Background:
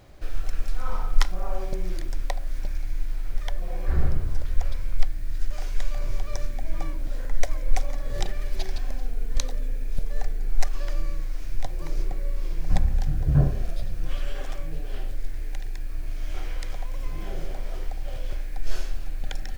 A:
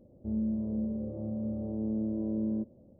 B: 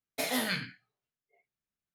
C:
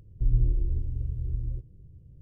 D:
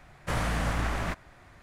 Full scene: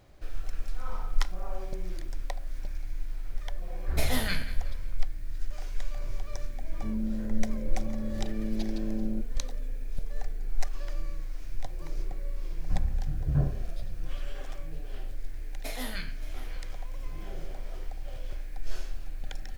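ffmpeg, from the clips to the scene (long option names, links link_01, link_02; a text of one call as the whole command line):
ffmpeg -i bed.wav -i cue0.wav -i cue1.wav -filter_complex "[2:a]asplit=2[link_01][link_02];[0:a]volume=-6.5dB[link_03];[link_01]aecho=1:1:183|366|549:0.168|0.0621|0.023[link_04];[link_02]aecho=1:1:572:0.141[link_05];[link_04]atrim=end=1.94,asetpts=PTS-STARTPTS,volume=-0.5dB,afade=type=in:duration=0.004:curve=hsin,afade=type=out:start_time=1.936:duration=0.004:curve=hsin,adelay=3790[link_06];[1:a]atrim=end=2.99,asetpts=PTS-STARTPTS,volume=-2dB,afade=type=in:duration=0.004:curve=hsin,afade=type=out:start_time=2.986:duration=0.004:curve=hsin,adelay=290178S[link_07];[link_05]atrim=end=1.94,asetpts=PTS-STARTPTS,volume=-7dB,afade=type=in:duration=0.004:curve=hsin,afade=type=out:start_time=1.936:duration=0.004:curve=hsin,adelay=15460[link_08];[link_03][link_06][link_07][link_08]amix=inputs=4:normalize=0" out.wav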